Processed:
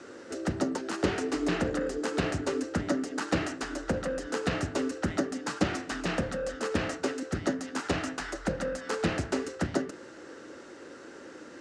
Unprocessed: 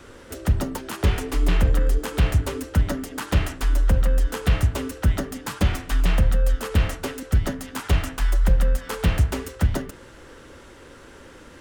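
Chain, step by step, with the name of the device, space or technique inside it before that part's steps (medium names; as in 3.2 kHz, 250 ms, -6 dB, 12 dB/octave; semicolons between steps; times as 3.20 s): full-range speaker at full volume (loudspeaker Doppler distortion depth 0.31 ms; cabinet simulation 230–7600 Hz, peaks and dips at 320 Hz +5 dB, 1 kHz -6 dB, 2.3 kHz -5 dB, 3.3 kHz -8 dB)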